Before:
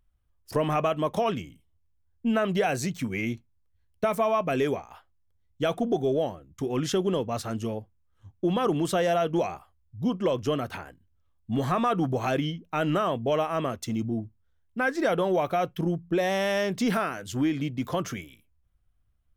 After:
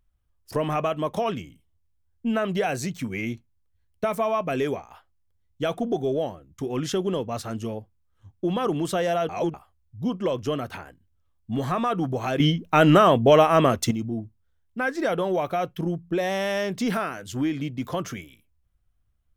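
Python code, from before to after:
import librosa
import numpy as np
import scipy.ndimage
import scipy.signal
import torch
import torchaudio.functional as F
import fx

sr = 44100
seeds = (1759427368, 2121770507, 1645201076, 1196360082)

y = fx.edit(x, sr, fx.reverse_span(start_s=9.29, length_s=0.25),
    fx.clip_gain(start_s=12.4, length_s=1.51, db=10.0), tone=tone)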